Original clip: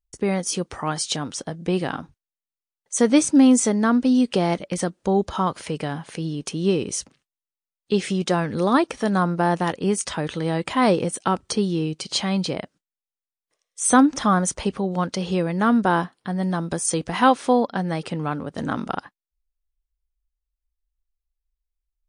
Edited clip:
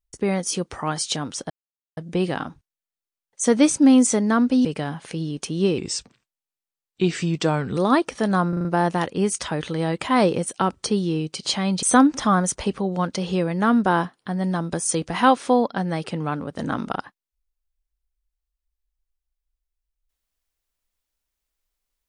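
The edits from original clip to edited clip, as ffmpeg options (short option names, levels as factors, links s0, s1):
-filter_complex "[0:a]asplit=10[s0][s1][s2][s3][s4][s5][s6][s7][s8][s9];[s0]atrim=end=1.5,asetpts=PTS-STARTPTS,afade=t=out:st=1.496:d=0.004:c=hsin,apad=pad_dur=0.47[s10];[s1]atrim=start=1.5:end=4.182,asetpts=PTS-STARTPTS,afade=t=in:d=0.004:c=hsin[s11];[s2]atrim=start=5.688:end=6.824[s12];[s3]atrim=start=6.82:end=8.59,asetpts=PTS-STARTPTS,asetrate=39249,aresample=44100,atrim=end_sample=87704,asetpts=PTS-STARTPTS[s13];[s4]atrim=start=8.586:end=9.352[s14];[s5]atrim=start=9.308:end=9.352[s15];[s6]atrim=start=9.308:end=9.352[s16];[s7]atrim=start=9.308:end=9.352[s17];[s8]atrim=start=9.308:end=12.492[s18];[s9]atrim=start=13.818[s19];[s10][s11]concat=n=2:v=0:a=1[s20];[s20][s12]acrossfade=d=0.004:c1=hsin:c2=hsin[s21];[s21][s13]acrossfade=d=0.004:c1=hsin:c2=hsin[s22];[s22][s14]acrossfade=d=0.004:c1=hsin:c2=hsin[s23];[s23][s15]acrossfade=d=0.004:c1=hsin:c2=hsin[s24];[s24][s16]acrossfade=d=0.004:c1=hsin:c2=hsin[s25];[s25][s17]acrossfade=d=0.004:c1=hsin:c2=hsin[s26];[s26][s18]acrossfade=d=0.004:c1=hsin:c2=hsin[s27];[s27][s19]acrossfade=d=0.004:c1=hsin:c2=hsin"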